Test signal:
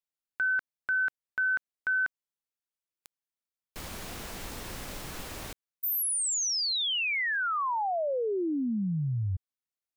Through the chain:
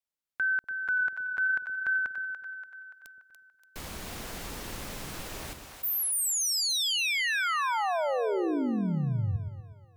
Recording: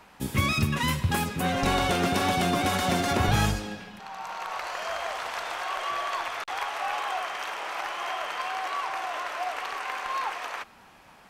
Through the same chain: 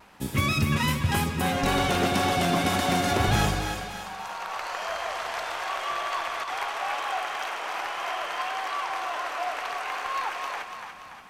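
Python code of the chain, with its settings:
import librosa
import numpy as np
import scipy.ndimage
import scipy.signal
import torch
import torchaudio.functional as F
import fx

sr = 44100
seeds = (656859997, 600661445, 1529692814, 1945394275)

y = fx.vibrato(x, sr, rate_hz=0.72, depth_cents=21.0)
y = fx.echo_split(y, sr, split_hz=550.0, low_ms=121, high_ms=288, feedback_pct=52, wet_db=-7)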